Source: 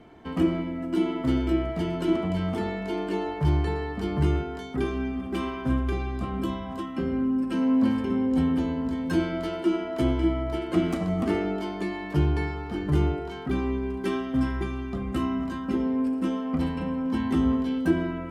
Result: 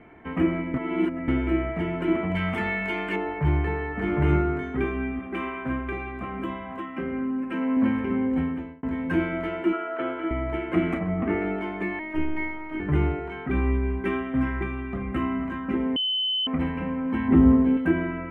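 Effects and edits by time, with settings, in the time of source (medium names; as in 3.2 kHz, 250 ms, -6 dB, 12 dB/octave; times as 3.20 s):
0.74–1.28 s: reverse
2.35–3.16 s: FFT filter 220 Hz 0 dB, 310 Hz -5 dB, 4.9 kHz +12 dB
3.90–4.69 s: reverb throw, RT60 0.81 s, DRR 1 dB
5.19–7.77 s: bass shelf 170 Hz -10 dB
8.27–8.83 s: fade out
9.73–10.31 s: cabinet simulation 440–3600 Hz, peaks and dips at 500 Hz +4 dB, 960 Hz -4 dB, 1.4 kHz +9 dB, 2.1 kHz -7 dB
10.99–11.42 s: distance through air 310 m
11.99–12.80 s: robot voice 313 Hz
13.54–14.23 s: peaking EQ 68 Hz +9 dB 0.9 oct
15.96–16.47 s: bleep 3.04 kHz -18 dBFS
17.28–17.77 s: tilt shelf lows +7.5 dB, about 1.2 kHz
whole clip: resonant high shelf 3.2 kHz -13.5 dB, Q 3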